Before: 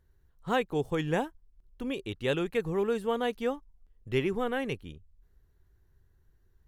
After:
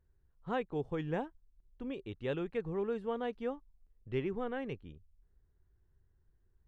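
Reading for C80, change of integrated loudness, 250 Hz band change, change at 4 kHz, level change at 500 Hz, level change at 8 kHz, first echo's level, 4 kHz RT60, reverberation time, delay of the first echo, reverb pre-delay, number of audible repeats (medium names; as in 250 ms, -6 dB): no reverb, -7.0 dB, -6.0 dB, -13.0 dB, -6.5 dB, no reading, no echo, no reverb, no reverb, no echo, no reverb, no echo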